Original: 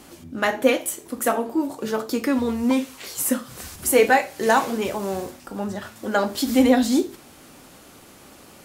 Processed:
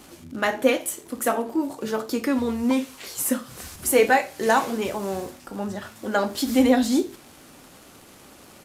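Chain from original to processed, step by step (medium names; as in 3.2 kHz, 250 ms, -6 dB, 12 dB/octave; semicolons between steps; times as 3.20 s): crackle 150 per s -36 dBFS; resampled via 32 kHz; trim -1.5 dB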